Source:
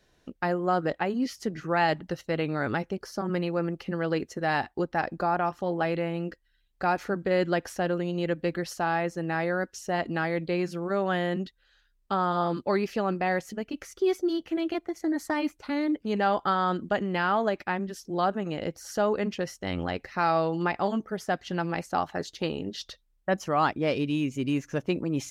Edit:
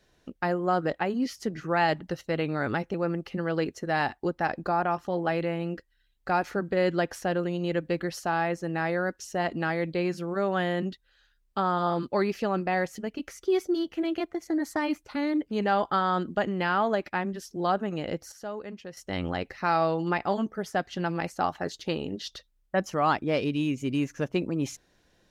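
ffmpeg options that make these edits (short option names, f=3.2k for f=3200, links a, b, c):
-filter_complex "[0:a]asplit=4[a][b][c][d];[a]atrim=end=2.942[e];[b]atrim=start=3.478:end=18.862[f];[c]atrim=start=18.858:end=19.512,asetpts=PTS-STARTPTS,volume=-11dB[g];[d]atrim=start=19.508[h];[e][f]acrossfade=d=0.004:c1=hsin:c2=hsin[i];[i][g]acrossfade=d=0.004:c1=hsin:c2=hsin[j];[j][h]acrossfade=d=0.004:c1=hsin:c2=hsin"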